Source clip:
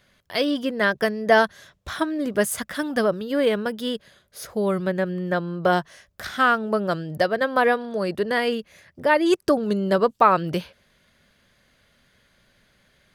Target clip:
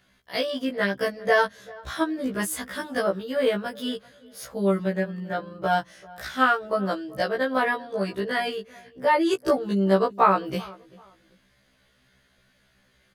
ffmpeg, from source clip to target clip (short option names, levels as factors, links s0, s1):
-filter_complex "[0:a]asettb=1/sr,asplit=3[s0][s1][s2];[s0]atrim=end=5.024[s3];[s1]atrim=start=5.02:end=5.63,asetpts=PTS-STARTPTS,afade=t=in:d=0.004:c=qsin,afade=t=out:st=0.606:d=0.004:c=qsin,tremolo=f=24:d=0.4[s4];[s2]atrim=start=5.626[s5];[s3][s4]acrossfade=d=0.004:c1=hsin:c2=qsin[s6];[s6][s5]acrossfade=d=0.004:c1=qsin:c2=hsin,asplit=2[s7][s8];[s8]adelay=388,lowpass=f=1500:p=1,volume=0.0891,asplit=2[s9][s10];[s10]adelay=388,lowpass=f=1500:p=1,volume=0.3[s11];[s7][s9][s11]amix=inputs=3:normalize=0,afftfilt=real='re*1.73*eq(mod(b,3),0)':imag='im*1.73*eq(mod(b,3),0)':win_size=2048:overlap=0.75"